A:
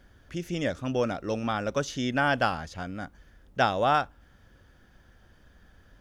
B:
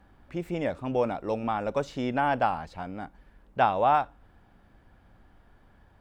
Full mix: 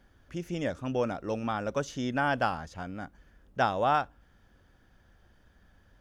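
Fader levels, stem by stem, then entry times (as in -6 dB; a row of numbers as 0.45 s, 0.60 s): -5.5 dB, -11.5 dB; 0.00 s, 0.00 s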